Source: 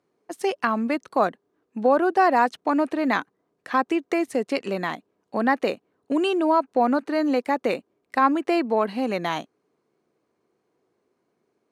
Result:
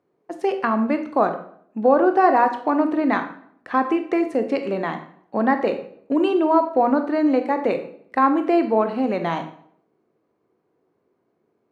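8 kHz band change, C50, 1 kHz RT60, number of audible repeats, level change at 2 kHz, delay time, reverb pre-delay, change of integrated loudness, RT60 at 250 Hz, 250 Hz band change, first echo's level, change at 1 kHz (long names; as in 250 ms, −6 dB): can't be measured, 10.0 dB, 0.60 s, no echo audible, −0.5 dB, no echo audible, 21 ms, +3.0 dB, 0.75 s, +3.5 dB, no echo audible, +2.5 dB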